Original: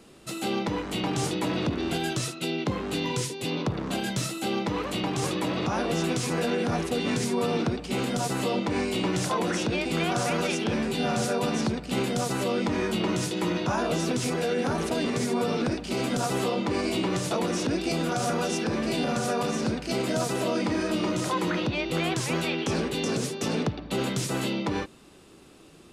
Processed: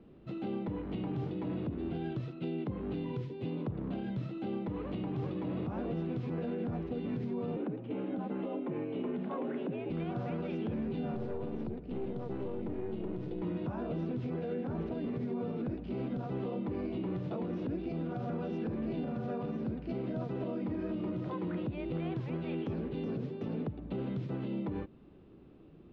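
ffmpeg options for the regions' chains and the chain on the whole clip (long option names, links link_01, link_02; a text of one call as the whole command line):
ffmpeg -i in.wav -filter_complex "[0:a]asettb=1/sr,asplit=3[link_01][link_02][link_03];[link_01]atrim=end=7.564[link_04];[link_02]atrim=start=7.56:end=9.9,asetpts=PTS-STARTPTS,afade=type=in:duration=0.004:curve=qsin,afade=type=out:start_time=2.336:duration=0.004:curve=qsin,lowpass=frequency=3300:width=0.5412,lowpass=frequency=3300:width=1.3066,afreqshift=62[link_05];[link_03]atrim=start=9.896[link_06];[link_04][link_05]acrossfade=duration=0.004:curve1=hsin:curve2=qsin[link_07];[link_07][link_06]acrossfade=duration=0.004:curve1=qsin:curve2=hsin,asettb=1/sr,asplit=3[link_08][link_09][link_10];[link_08]atrim=end=11.144[link_11];[link_09]atrim=start=11.14:end=13.42,asetpts=PTS-STARTPTS,afade=type=in:duration=0.004:curve=qsin,afade=type=out:start_time=2.276:duration=0.004:curve=qsin,equalizer=frequency=400:width=2.2:gain=8.5,aeval=exprs='(tanh(8.91*val(0)+0.7)-tanh(0.7))/8.91':channel_layout=same[link_12];[link_10]atrim=start=13.416[link_13];[link_11][link_12]acrossfade=duration=0.004:curve1=hsin:curve2=qsin[link_14];[link_14][link_13]acrossfade=duration=0.004:curve1=qsin:curve2=hsin,lowpass=frequency=3400:width=0.5412,lowpass=frequency=3400:width=1.3066,tiltshelf=frequency=650:gain=9,alimiter=limit=-19.5dB:level=0:latency=1:release=231,volume=-8.5dB" out.wav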